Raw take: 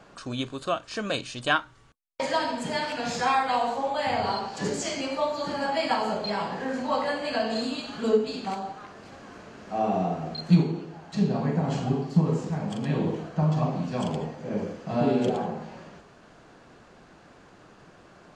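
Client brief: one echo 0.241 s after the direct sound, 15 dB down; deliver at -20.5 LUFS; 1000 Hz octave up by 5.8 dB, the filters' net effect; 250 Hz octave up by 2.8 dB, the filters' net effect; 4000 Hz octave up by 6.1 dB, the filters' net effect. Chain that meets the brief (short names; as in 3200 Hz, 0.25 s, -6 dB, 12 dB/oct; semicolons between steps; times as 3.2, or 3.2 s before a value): bell 250 Hz +3.5 dB; bell 1000 Hz +7 dB; bell 4000 Hz +7 dB; echo 0.241 s -15 dB; gain +3.5 dB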